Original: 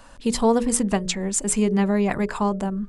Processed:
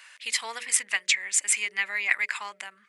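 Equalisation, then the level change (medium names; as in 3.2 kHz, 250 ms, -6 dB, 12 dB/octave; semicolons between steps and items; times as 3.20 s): resonant high-pass 2.1 kHz, resonance Q 4.4; 0.0 dB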